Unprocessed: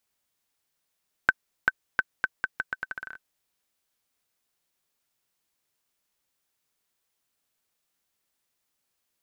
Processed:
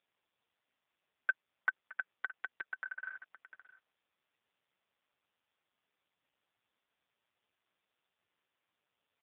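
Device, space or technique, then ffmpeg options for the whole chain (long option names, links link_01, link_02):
satellite phone: -af "highpass=370,lowpass=3400,aecho=1:1:618:0.126,volume=3.5dB" -ar 8000 -c:a libopencore_amrnb -b:a 5150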